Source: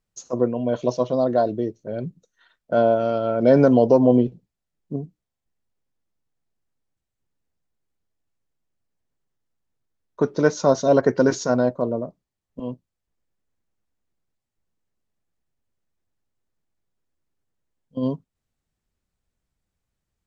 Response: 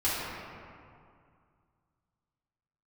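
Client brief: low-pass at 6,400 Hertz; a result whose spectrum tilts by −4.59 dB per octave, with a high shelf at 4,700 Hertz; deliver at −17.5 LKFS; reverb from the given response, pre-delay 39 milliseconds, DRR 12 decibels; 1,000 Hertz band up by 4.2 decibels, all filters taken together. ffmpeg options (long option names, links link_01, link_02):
-filter_complex "[0:a]lowpass=6400,equalizer=frequency=1000:width_type=o:gain=7,highshelf=frequency=4700:gain=-6.5,asplit=2[link_01][link_02];[1:a]atrim=start_sample=2205,adelay=39[link_03];[link_02][link_03]afir=irnorm=-1:irlink=0,volume=-23dB[link_04];[link_01][link_04]amix=inputs=2:normalize=0,volume=1.5dB"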